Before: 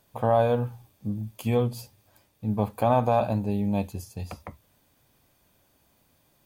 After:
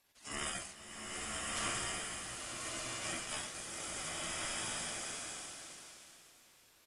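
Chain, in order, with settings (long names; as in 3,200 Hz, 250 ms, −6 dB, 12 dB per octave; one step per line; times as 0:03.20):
harmonic-percussive split with one part muted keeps harmonic
RIAA equalisation recording
gate on every frequency bin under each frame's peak −30 dB weak
speed change −6%
ring modulation 1,300 Hz
pitch shifter −7 semitones
slow-attack reverb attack 1,390 ms, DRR −5.5 dB
level +11 dB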